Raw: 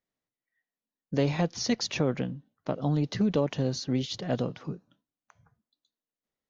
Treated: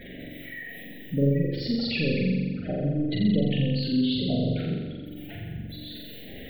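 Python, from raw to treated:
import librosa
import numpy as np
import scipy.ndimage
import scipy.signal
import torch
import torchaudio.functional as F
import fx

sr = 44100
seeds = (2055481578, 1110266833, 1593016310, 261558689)

y = x + 0.5 * 10.0 ** (-34.5 / 20.0) * np.sign(x)
y = fx.fixed_phaser(y, sr, hz=2600.0, stages=4)
y = 10.0 ** (-24.0 / 20.0) * np.tanh(y / 10.0 ** (-24.0 / 20.0))
y = fx.spec_gate(y, sr, threshold_db=-15, keep='strong')
y = fx.room_flutter(y, sr, wall_m=7.4, rt60_s=1.4)
y = F.gain(torch.from_numpy(y), 2.5).numpy()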